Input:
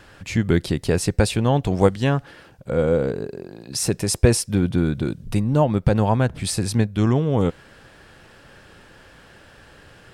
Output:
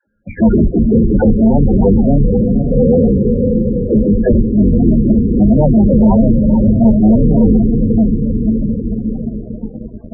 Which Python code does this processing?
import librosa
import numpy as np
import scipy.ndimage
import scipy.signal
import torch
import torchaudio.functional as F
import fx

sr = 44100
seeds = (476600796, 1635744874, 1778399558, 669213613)

p1 = fx.octave_divider(x, sr, octaves=2, level_db=1.0)
p2 = scipy.signal.sosfilt(scipy.signal.butter(4, 1800.0, 'lowpass', fs=sr, output='sos'), p1)
p3 = fx.peak_eq(p2, sr, hz=220.0, db=14.5, octaves=0.32)
p4 = fx.dispersion(p3, sr, late='lows', ms=78.0, hz=310.0)
p5 = p4 + fx.echo_diffused(p4, sr, ms=508, feedback_pct=61, wet_db=-8.0, dry=0)
p6 = fx.leveller(p5, sr, passes=5)
p7 = fx.peak_eq(p6, sr, hz=710.0, db=2.0, octaves=2.1)
p8 = fx.spec_topn(p7, sr, count=16)
p9 = fx.hum_notches(p8, sr, base_hz=60, count=7)
y = p9 * librosa.db_to_amplitude(-8.0)